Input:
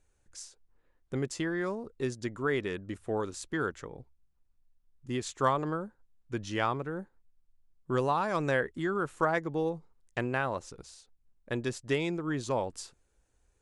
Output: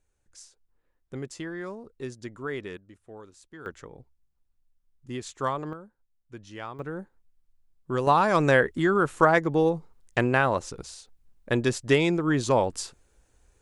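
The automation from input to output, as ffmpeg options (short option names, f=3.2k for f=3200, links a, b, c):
-af "asetnsamples=n=441:p=0,asendcmd='2.77 volume volume -13dB;3.66 volume volume -1.5dB;5.73 volume volume -8.5dB;6.79 volume volume 1.5dB;8.07 volume volume 8.5dB',volume=-3.5dB"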